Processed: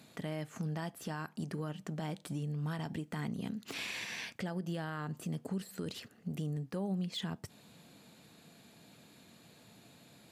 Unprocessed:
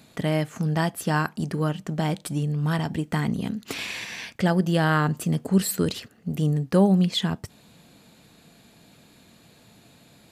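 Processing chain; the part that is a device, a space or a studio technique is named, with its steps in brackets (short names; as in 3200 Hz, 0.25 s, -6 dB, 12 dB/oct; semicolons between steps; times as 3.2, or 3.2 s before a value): podcast mastering chain (HPF 96 Hz 12 dB/oct; de-esser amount 65%; compressor 2.5:1, threshold -32 dBFS, peak gain reduction 12.5 dB; limiter -23.5 dBFS, peak gain reduction 5 dB; gain -4.5 dB; MP3 112 kbps 48000 Hz)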